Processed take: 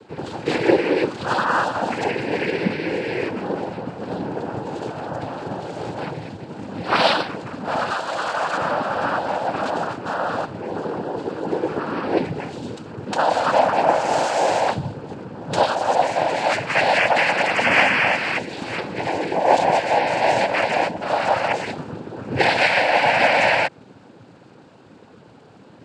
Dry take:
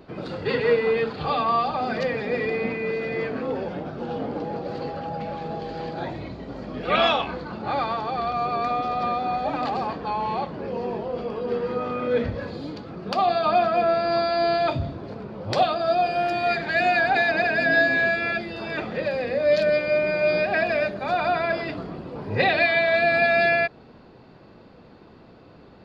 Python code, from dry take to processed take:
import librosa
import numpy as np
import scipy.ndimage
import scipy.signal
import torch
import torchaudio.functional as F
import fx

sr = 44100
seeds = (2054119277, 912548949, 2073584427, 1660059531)

y = fx.tilt_eq(x, sr, slope=3.0, at=(7.9, 8.57))
y = fx.noise_vocoder(y, sr, seeds[0], bands=8)
y = y * librosa.db_to_amplitude(3.0)